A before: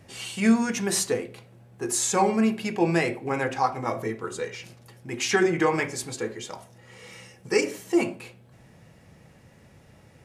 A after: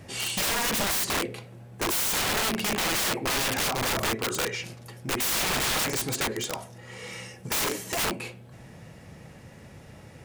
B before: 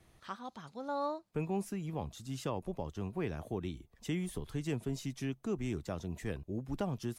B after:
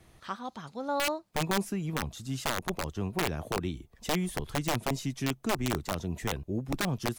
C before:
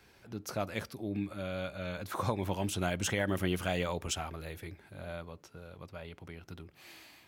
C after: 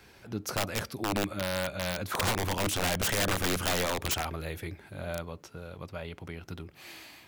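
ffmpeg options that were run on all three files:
-af "afftfilt=real='re*lt(hypot(re,im),0.501)':imag='im*lt(hypot(re,im),0.501)':win_size=1024:overlap=0.75,aeval=exprs='(mod(23.7*val(0)+1,2)-1)/23.7':c=same,volume=2"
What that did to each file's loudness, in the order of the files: -0.5 LU, +6.5 LU, +4.5 LU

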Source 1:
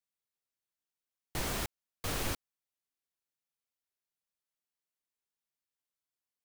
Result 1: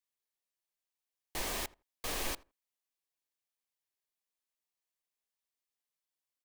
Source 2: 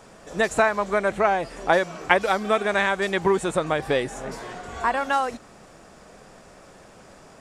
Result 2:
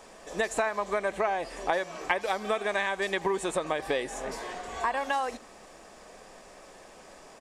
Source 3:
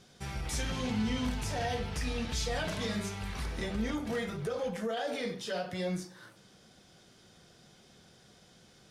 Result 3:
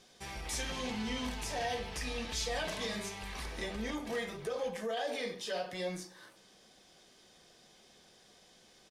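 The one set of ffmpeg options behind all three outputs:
-filter_complex "[0:a]equalizer=f=110:t=o:w=1.9:g=-14,bandreject=f=1400:w=7.1,acompressor=threshold=0.0501:ratio=3,asplit=2[s0][s1];[s1]adelay=82,lowpass=f=1700:p=1,volume=0.0891,asplit=2[s2][s3];[s3]adelay=82,lowpass=f=1700:p=1,volume=0.16[s4];[s0][s2][s4]amix=inputs=3:normalize=0"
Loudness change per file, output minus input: -1.0 LU, -7.0 LU, -2.5 LU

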